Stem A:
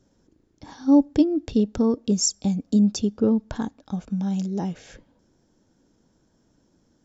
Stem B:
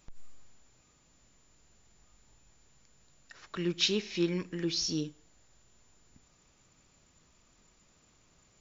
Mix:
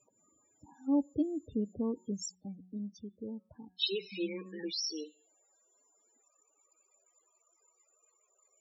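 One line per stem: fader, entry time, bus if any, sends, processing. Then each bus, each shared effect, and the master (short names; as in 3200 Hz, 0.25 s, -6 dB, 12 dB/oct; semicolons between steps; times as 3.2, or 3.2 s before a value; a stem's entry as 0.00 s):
1.96 s -13 dB -> 2.62 s -22 dB, 0.00 s, no send, dry
0.0 dB, 0.00 s, muted 2.35–3.79, no send, HPF 390 Hz 24 dB/oct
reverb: off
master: HPF 59 Hz 24 dB/oct; de-hum 184 Hz, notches 22; loudest bins only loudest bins 16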